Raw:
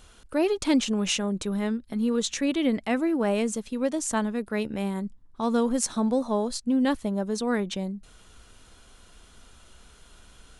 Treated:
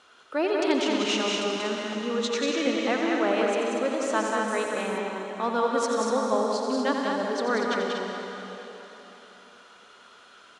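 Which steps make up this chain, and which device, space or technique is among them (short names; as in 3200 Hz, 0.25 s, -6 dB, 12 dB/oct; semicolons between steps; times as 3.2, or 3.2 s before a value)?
station announcement (BPF 380–4700 Hz; bell 1300 Hz +6 dB 0.52 oct; loudspeakers at several distances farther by 30 m -8 dB, 64 m -4 dB, 82 m -7 dB; reverb RT60 3.9 s, pre-delay 0.114 s, DRR 3 dB); 4.48–4.98 bell 9900 Hz +12 dB 0.6 oct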